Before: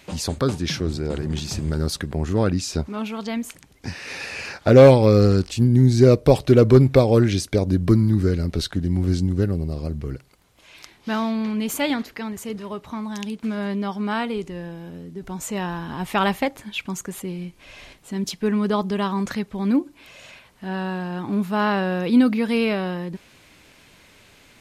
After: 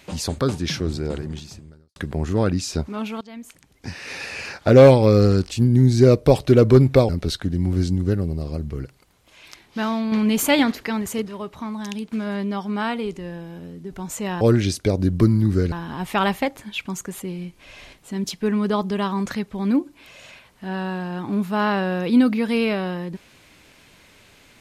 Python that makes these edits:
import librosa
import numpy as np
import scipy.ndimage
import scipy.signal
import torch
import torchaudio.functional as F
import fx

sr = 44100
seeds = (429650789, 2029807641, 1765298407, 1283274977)

y = fx.edit(x, sr, fx.fade_out_span(start_s=1.08, length_s=0.88, curve='qua'),
    fx.fade_in_from(start_s=3.21, length_s=0.84, floor_db=-18.0),
    fx.move(start_s=7.09, length_s=1.31, to_s=15.72),
    fx.clip_gain(start_s=11.43, length_s=1.1, db=5.5), tone=tone)